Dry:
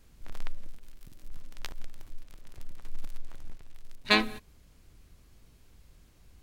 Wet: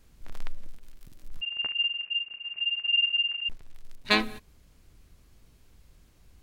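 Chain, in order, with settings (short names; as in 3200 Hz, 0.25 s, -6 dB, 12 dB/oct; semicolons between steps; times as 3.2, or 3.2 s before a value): 1.41–3.49 inverted band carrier 2800 Hz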